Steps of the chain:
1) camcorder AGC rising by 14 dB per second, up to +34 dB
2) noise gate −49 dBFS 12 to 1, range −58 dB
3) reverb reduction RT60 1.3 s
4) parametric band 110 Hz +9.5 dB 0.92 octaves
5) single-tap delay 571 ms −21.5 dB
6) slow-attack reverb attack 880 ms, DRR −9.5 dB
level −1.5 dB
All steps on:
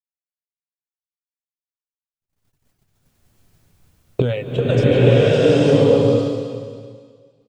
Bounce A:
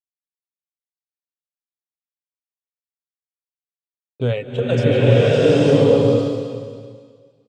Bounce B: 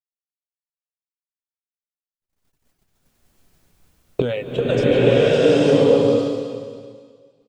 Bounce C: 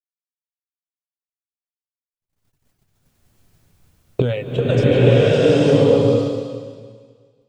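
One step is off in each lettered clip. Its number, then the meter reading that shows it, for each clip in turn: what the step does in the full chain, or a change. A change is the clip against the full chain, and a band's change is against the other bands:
1, change in momentary loudness spread −2 LU
4, 125 Hz band −7.5 dB
5, change in momentary loudness spread −2 LU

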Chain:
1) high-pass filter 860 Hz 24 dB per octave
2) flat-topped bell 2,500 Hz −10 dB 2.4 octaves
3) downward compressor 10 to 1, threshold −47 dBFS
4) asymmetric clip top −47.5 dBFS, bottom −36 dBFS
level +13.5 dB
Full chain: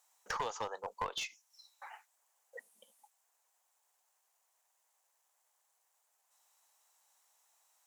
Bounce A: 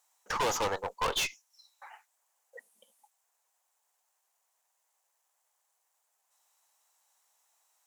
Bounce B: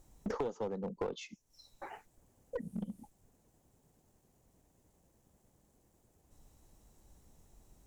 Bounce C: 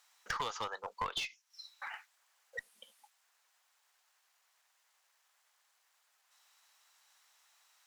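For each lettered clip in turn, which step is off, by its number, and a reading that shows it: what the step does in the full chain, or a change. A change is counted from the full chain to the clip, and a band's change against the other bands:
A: 3, average gain reduction 11.0 dB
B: 1, 250 Hz band +25.5 dB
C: 2, 500 Hz band −4.0 dB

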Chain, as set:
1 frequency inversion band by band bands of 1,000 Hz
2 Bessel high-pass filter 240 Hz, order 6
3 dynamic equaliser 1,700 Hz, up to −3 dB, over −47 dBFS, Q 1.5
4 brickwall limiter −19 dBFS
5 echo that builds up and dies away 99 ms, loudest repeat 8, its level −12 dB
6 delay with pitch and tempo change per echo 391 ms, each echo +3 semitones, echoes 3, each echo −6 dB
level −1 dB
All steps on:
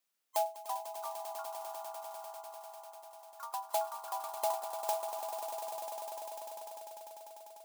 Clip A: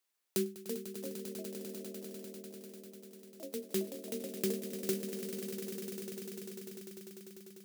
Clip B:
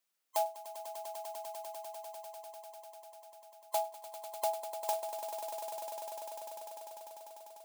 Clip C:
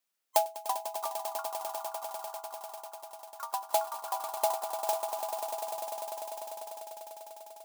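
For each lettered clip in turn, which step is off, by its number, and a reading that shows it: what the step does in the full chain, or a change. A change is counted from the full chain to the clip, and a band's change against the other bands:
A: 1, 1 kHz band −27.0 dB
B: 6, change in momentary loudness spread +1 LU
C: 4, change in crest factor +6.0 dB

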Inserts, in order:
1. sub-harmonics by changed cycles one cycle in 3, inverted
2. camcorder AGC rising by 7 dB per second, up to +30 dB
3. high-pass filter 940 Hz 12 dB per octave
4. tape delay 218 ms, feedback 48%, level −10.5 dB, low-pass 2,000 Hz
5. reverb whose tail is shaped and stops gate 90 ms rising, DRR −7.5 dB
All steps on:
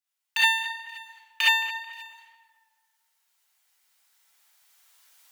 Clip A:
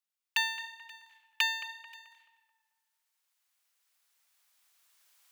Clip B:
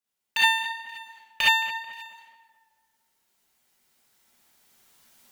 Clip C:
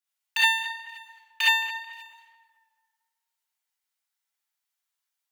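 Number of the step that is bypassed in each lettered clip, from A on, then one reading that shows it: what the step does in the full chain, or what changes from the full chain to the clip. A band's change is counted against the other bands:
5, change in crest factor +2.5 dB
3, 1 kHz band +3.5 dB
2, change in momentary loudness spread −2 LU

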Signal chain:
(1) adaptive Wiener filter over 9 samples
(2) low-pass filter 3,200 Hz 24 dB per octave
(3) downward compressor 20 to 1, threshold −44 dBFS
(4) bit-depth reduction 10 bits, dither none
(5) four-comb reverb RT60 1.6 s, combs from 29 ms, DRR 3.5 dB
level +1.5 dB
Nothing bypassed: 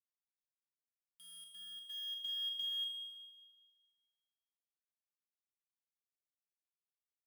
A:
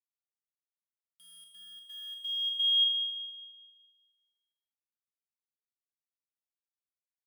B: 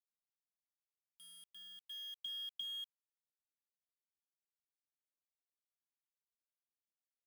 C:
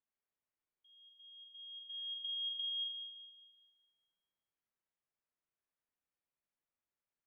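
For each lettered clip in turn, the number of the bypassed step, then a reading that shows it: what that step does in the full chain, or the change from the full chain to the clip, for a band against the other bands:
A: 3, average gain reduction 3.5 dB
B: 5, change in momentary loudness spread −3 LU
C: 4, distortion level −16 dB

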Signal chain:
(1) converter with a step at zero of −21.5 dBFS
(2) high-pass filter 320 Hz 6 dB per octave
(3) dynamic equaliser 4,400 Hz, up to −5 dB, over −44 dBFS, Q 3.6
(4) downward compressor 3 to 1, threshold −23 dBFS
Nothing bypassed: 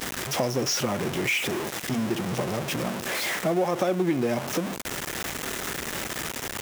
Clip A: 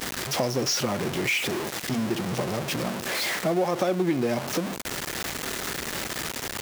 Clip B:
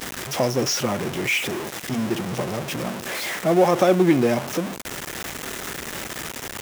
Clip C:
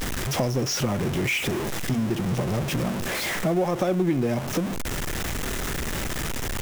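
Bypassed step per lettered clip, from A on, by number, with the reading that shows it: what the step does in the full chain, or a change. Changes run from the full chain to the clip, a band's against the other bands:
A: 3, 4 kHz band +1.5 dB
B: 4, average gain reduction 1.5 dB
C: 2, 125 Hz band +7.0 dB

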